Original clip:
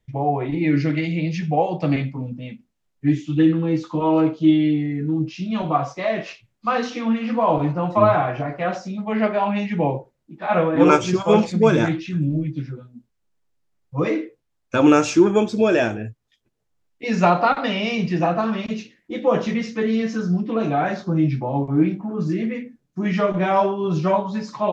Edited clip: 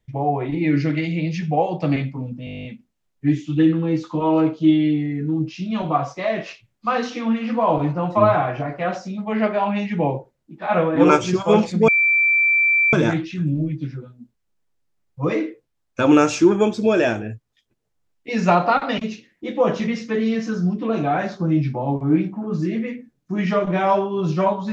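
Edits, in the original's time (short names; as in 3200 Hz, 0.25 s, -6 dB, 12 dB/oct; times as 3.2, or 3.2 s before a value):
2.45 stutter 0.02 s, 11 plays
11.68 add tone 2340 Hz -13.5 dBFS 1.05 s
17.73–18.65 cut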